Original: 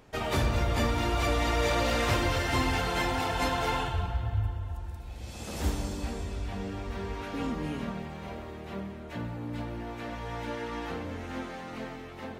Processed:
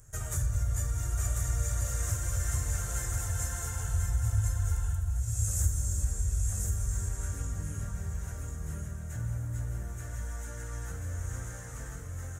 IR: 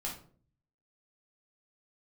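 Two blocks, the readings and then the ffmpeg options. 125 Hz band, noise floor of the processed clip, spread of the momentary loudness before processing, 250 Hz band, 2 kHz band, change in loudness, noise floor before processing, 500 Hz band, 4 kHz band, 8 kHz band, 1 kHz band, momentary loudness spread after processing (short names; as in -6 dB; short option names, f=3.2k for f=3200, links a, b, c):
+2.5 dB, -41 dBFS, 13 LU, -13.5 dB, -12.0 dB, -1.5 dB, -42 dBFS, -16.0 dB, -15.5 dB, +9.5 dB, -15.5 dB, 9 LU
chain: -filter_complex "[0:a]acompressor=threshold=-31dB:ratio=6,firequalizer=gain_entry='entry(110,0);entry(230,-24);entry(580,-18);entry(860,-24);entry(1500,-10);entry(2400,-24);entry(4500,-20);entry(6700,9);entry(14000,2)':delay=0.05:min_phase=1,asplit=2[a][b];[b]aecho=0:1:1042:0.631[c];[a][c]amix=inputs=2:normalize=0,volume=7dB"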